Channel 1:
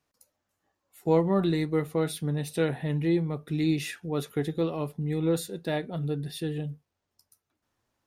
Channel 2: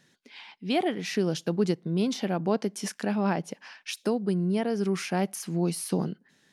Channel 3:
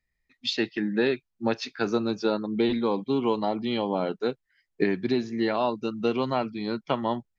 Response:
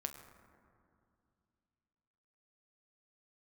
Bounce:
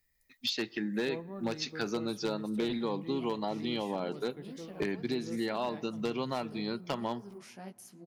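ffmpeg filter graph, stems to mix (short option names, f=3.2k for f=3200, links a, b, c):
-filter_complex "[0:a]volume=-18.5dB[a];[1:a]highshelf=f=5.9k:g=6.5,flanger=delay=15:depth=5:speed=2.7,adelay=2450,volume=-18dB,asplit=2[b][c];[c]volume=-12.5dB[d];[2:a]aemphasis=mode=production:type=50fm,aeval=exprs='0.168*(abs(mod(val(0)/0.168+3,4)-2)-1)':c=same,volume=0.5dB,asplit=2[e][f];[f]volume=-22.5dB[g];[b][e]amix=inputs=2:normalize=0,acompressor=threshold=-36dB:ratio=2.5,volume=0dB[h];[3:a]atrim=start_sample=2205[i];[d][g]amix=inputs=2:normalize=0[j];[j][i]afir=irnorm=-1:irlink=0[k];[a][h][k]amix=inputs=3:normalize=0"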